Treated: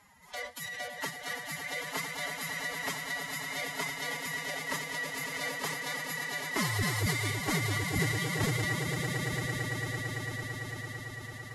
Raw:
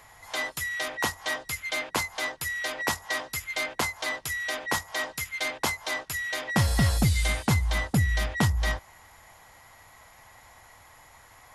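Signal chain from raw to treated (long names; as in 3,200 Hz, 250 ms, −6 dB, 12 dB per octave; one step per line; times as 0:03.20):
echo that builds up and dies away 112 ms, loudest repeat 8, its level −10 dB
phase-vocoder pitch shift with formants kept +11 semitones
level −8 dB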